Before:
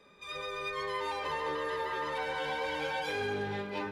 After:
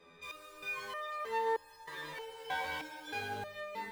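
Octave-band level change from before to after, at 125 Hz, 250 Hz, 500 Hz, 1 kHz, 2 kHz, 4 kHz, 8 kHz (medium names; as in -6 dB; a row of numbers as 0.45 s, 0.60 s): -9.5 dB, -11.0 dB, -6.0 dB, -3.5 dB, -4.0 dB, -6.0 dB, -2.0 dB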